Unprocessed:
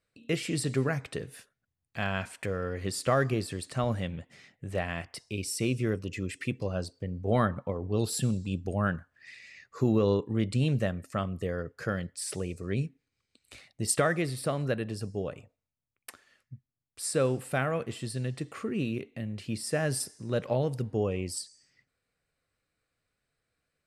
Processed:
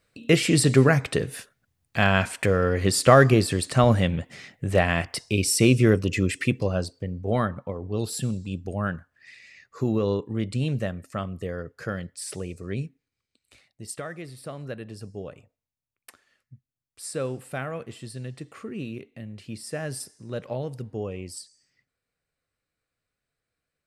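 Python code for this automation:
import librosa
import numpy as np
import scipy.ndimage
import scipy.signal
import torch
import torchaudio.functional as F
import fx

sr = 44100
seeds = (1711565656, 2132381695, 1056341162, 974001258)

y = fx.gain(x, sr, db=fx.line((6.21, 11.0), (7.48, 0.5), (12.7, 0.5), (14.03, -10.0), (15.1, -3.0)))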